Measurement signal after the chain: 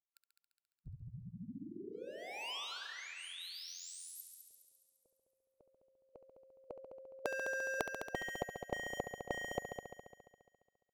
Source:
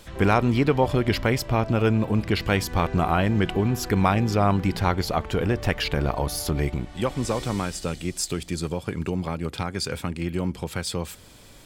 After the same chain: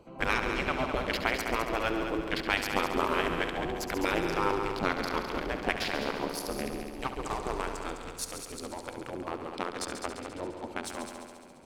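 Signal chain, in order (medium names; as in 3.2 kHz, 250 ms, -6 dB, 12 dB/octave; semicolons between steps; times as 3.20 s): local Wiener filter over 25 samples; spectral gate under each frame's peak -10 dB weak; multi-head delay 69 ms, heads all three, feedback 57%, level -11 dB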